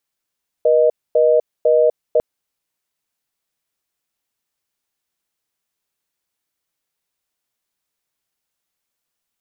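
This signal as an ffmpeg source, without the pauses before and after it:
-f lavfi -i "aevalsrc='0.224*(sin(2*PI*480*t)+sin(2*PI*620*t))*clip(min(mod(t,0.5),0.25-mod(t,0.5))/0.005,0,1)':d=1.55:s=44100"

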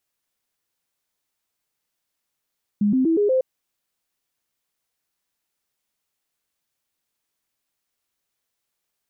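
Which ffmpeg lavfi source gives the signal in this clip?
-f lavfi -i "aevalsrc='0.168*clip(min(mod(t,0.12),0.12-mod(t,0.12))/0.005,0,1)*sin(2*PI*206*pow(2,floor(t/0.12)/3)*mod(t,0.12))':d=0.6:s=44100"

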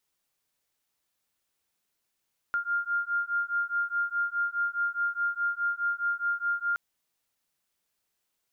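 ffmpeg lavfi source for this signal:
-f lavfi -i "aevalsrc='0.0335*(sin(2*PI*1400*t)+sin(2*PI*1404.8*t))':d=4.22:s=44100"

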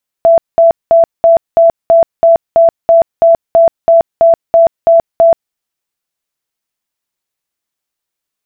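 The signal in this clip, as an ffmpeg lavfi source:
-f lavfi -i "aevalsrc='0.75*sin(2*PI*667*mod(t,0.33))*lt(mod(t,0.33),86/667)':d=5.28:s=44100"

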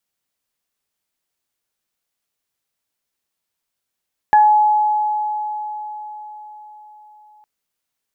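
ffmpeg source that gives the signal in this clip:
-f lavfi -i "aevalsrc='0.447*pow(10,-3*t/4.7)*sin(2*PI*847*t)+0.141*pow(10,-3*t/0.29)*sin(2*PI*1694*t)':d=3.11:s=44100"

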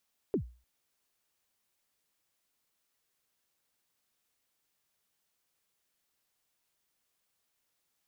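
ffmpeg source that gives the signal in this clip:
-f lavfi -i "aevalsrc='0.0708*pow(10,-3*t/0.36)*sin(2*PI*(460*0.095/log(60/460)*(exp(log(60/460)*min(t,0.095)/0.095)-1)+60*max(t-0.095,0)))':d=0.3:s=44100"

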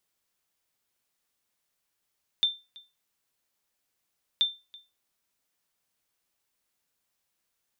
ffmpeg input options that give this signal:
-f lavfi -i "aevalsrc='0.158*(sin(2*PI*3570*mod(t,1.98))*exp(-6.91*mod(t,1.98)/0.26)+0.0631*sin(2*PI*3570*max(mod(t,1.98)-0.33,0))*exp(-6.91*max(mod(t,1.98)-0.33,0)/0.26))':d=3.96:s=44100"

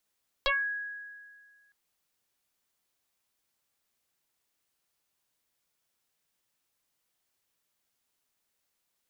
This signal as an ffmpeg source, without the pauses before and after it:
-f lavfi -i "aevalsrc='0.075*pow(10,-3*t/1.82)*sin(2*PI*1660*t+5.7*pow(10,-3*t/0.23)*sin(2*PI*0.33*1660*t))':d=1.26:s=44100"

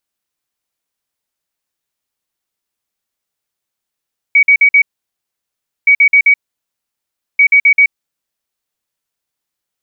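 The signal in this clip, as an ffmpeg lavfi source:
-f lavfi -i "aevalsrc='0.631*sin(2*PI*2260*t)*clip(min(mod(mod(t,1.52),0.13),0.08-mod(mod(t,1.52),0.13))/0.005,0,1)*lt(mod(t,1.52),0.52)':d=4.56:s=44100"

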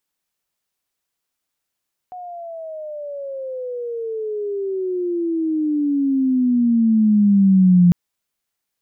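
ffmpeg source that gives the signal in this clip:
-f lavfi -i "aevalsrc='pow(10,(-8+22.5*(t/5.8-1))/20)*sin(2*PI*734*5.8/(-25*log(2)/12)*(exp(-25*log(2)/12*t/5.8)-1))':d=5.8:s=44100"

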